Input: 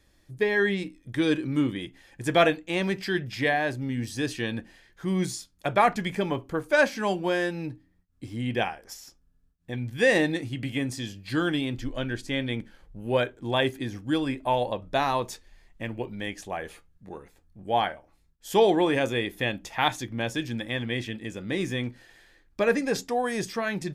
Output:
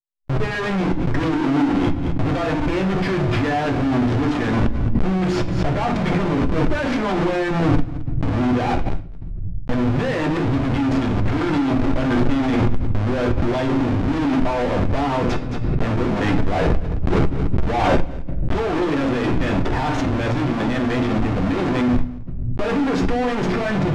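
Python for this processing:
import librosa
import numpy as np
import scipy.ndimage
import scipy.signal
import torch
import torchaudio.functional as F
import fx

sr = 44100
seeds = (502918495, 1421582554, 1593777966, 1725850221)

p1 = fx.env_lowpass(x, sr, base_hz=1900.0, full_db=-21.5)
p2 = fx.peak_eq(p1, sr, hz=280.0, db=5.0, octaves=0.35)
p3 = fx.hum_notches(p2, sr, base_hz=60, count=7)
p4 = fx.leveller(p3, sr, passes=3)
p5 = fx.schmitt(p4, sr, flips_db=-34.0)
p6 = fx.spacing_loss(p5, sr, db_at_10k=26)
p7 = p6 + fx.echo_single(p6, sr, ms=218, db=-21.0, dry=0)
p8 = fx.room_shoebox(p7, sr, seeds[0], volume_m3=50.0, walls='mixed', distance_m=0.41)
p9 = fx.pre_swell(p8, sr, db_per_s=28.0)
y = p9 * 10.0 ** (-2.5 / 20.0)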